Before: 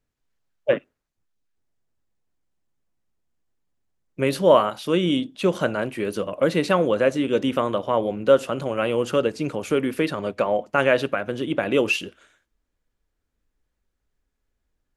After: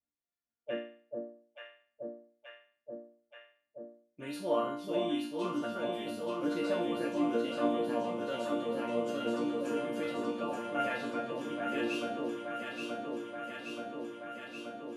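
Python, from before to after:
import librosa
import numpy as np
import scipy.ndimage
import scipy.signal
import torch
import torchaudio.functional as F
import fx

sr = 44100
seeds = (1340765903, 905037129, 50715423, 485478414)

p1 = scipy.signal.sosfilt(scipy.signal.butter(2, 110.0, 'highpass', fs=sr, output='sos'), x)
p2 = fx.low_shelf(p1, sr, hz=210.0, db=9.0)
p3 = fx.resonator_bank(p2, sr, root=58, chord='major', decay_s=0.48)
p4 = p3 + fx.echo_alternate(p3, sr, ms=439, hz=820.0, feedback_pct=87, wet_db=-2.5, dry=0)
y = p4 * librosa.db_to_amplitude(4.0)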